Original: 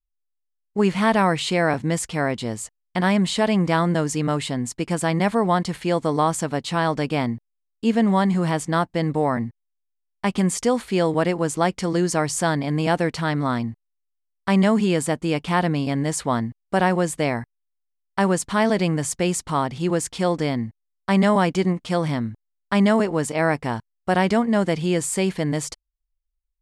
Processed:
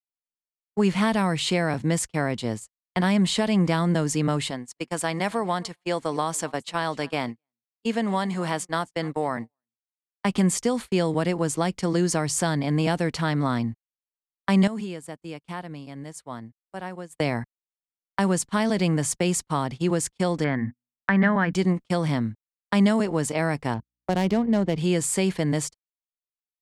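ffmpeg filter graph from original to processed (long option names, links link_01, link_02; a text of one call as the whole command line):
ffmpeg -i in.wav -filter_complex "[0:a]asettb=1/sr,asplit=3[link_01][link_02][link_03];[link_01]atrim=end=4.504[link_04];[link_02]atrim=start=4.5:end=10.25,asetpts=PTS-STARTPTS,afade=type=in:duration=0.004:curve=qsin,afade=type=out:start_time=5.746:duration=0.004:curve=qsin,lowshelf=frequency=280:gain=-11.5,aecho=1:1:259:0.0631,atrim=end_sample=253575[link_05];[link_03]atrim=start=10.246[link_06];[link_04][link_05]acrossfade=duration=0.004:curve1=hsin:curve2=qsin[link_07];[link_07][link_06]acrossfade=duration=0.004:curve1=qsin:curve2=hsin,asettb=1/sr,asplit=3[link_08][link_09][link_10];[link_08]atrim=end=14.674[link_11];[link_09]atrim=start=14.67:end=17.15,asetpts=PTS-STARTPTS,afade=type=in:duration=0.004:curve=qsin,afade=type=out:start_time=2.476:duration=0.004:curve=qsin,highshelf=frequency=10000:gain=6.5,acompressor=threshold=-27dB:ratio=6:attack=3.2:release=140:knee=1:detection=peak[link_12];[link_10]atrim=start=17.146[link_13];[link_11][link_12]acrossfade=duration=0.004:curve1=hsin:curve2=qsin[link_14];[link_14][link_13]acrossfade=duration=0.004:curve1=qsin:curve2=hsin,asettb=1/sr,asplit=3[link_15][link_16][link_17];[link_15]atrim=end=20.444[link_18];[link_16]atrim=start=20.44:end=21.53,asetpts=PTS-STARTPTS,afade=type=in:duration=0.004:curve=qsin,afade=type=out:start_time=1.086:duration=0.004:curve=qsin,lowpass=frequency=1700:width_type=q:width=5.4,bandreject=frequency=60.74:width_type=h:width=4,bandreject=frequency=121.48:width_type=h:width=4,bandreject=frequency=182.22:width_type=h:width=4,bandreject=frequency=242.96:width_type=h:width=4[link_19];[link_17]atrim=start=21.526[link_20];[link_18][link_19]acrossfade=duration=0.004:curve1=hsin:curve2=qsin[link_21];[link_21][link_20]acrossfade=duration=0.004:curve1=qsin:curve2=hsin,asettb=1/sr,asplit=3[link_22][link_23][link_24];[link_22]atrim=end=23.744[link_25];[link_23]atrim=start=23.74:end=24.78,asetpts=PTS-STARTPTS,afade=type=in:duration=0.004:curve=qsin,afade=type=out:start_time=1.036:duration=0.004:curve=qsin,equalizer=frequency=1500:width_type=o:width=1.2:gain=-7,adynamicsmooth=sensitivity=3:basefreq=1400,aeval=exprs='val(0)+0.00251*(sin(2*PI*60*n/s)+sin(2*PI*2*60*n/s)/2+sin(2*PI*3*60*n/s)/3+sin(2*PI*4*60*n/s)/4+sin(2*PI*5*60*n/s)/5)':channel_layout=same[link_26];[link_24]atrim=start=24.776[link_27];[link_25][link_26]acrossfade=duration=0.004:curve1=hsin:curve2=qsin[link_28];[link_28][link_27]acrossfade=duration=0.004:curve1=qsin:curve2=hsin,agate=range=-40dB:threshold=-29dB:ratio=16:detection=peak,acrossover=split=230|3000[link_29][link_30][link_31];[link_30]acompressor=threshold=-22dB:ratio=6[link_32];[link_29][link_32][link_31]amix=inputs=3:normalize=0" out.wav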